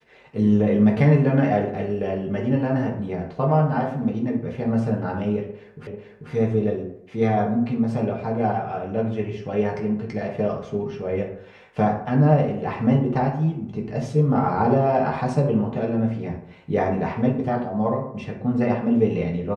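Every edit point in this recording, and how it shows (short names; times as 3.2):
5.87 repeat of the last 0.44 s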